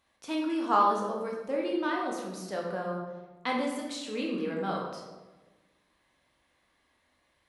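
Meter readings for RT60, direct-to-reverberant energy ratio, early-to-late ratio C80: 1.3 s, −2.0 dB, 5.5 dB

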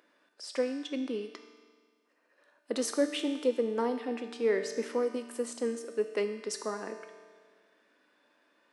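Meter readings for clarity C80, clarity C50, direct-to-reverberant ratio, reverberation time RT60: 8.5 dB, 7.5 dB, 5.5 dB, 1.7 s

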